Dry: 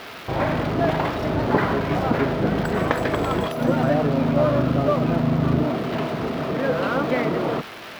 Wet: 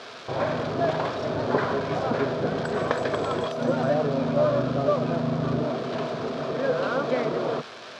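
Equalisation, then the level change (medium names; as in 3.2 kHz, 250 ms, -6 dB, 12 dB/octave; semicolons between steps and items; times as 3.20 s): cabinet simulation 160–7300 Hz, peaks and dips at 190 Hz -10 dB, 310 Hz -9 dB, 850 Hz -6 dB, 1.3 kHz -3 dB, 2 kHz -9 dB, 2.8 kHz -6 dB; 0.0 dB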